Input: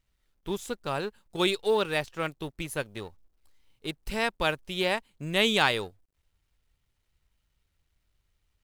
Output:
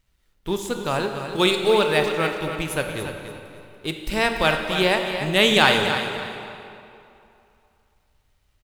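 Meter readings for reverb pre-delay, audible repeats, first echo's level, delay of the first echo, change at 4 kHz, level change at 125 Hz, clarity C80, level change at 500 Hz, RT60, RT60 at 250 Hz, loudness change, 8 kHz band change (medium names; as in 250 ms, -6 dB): 22 ms, 3, -9.5 dB, 287 ms, +8.0 dB, +8.5 dB, 4.5 dB, +8.0 dB, 2.7 s, 2.5 s, +7.5 dB, +7.5 dB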